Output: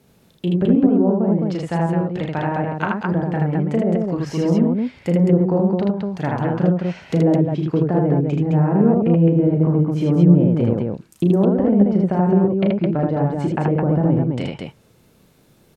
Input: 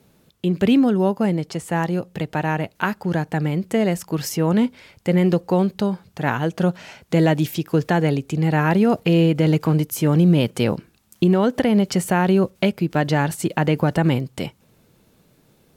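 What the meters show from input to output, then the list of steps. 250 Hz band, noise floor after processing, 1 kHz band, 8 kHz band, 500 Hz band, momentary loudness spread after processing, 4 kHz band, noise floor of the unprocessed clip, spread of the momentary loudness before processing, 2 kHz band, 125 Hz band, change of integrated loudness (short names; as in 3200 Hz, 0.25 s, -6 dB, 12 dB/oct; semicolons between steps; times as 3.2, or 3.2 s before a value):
+2.5 dB, -55 dBFS, -1.0 dB, under -10 dB, +1.5 dB, 8 LU, n/a, -59 dBFS, 8 LU, -6.5 dB, +2.5 dB, +2.0 dB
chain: treble ducked by the level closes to 630 Hz, closed at -16 dBFS; on a send: loudspeakers at several distances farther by 12 m -6 dB, 27 m -2 dB, 73 m -3 dB; on the sum: gain -1 dB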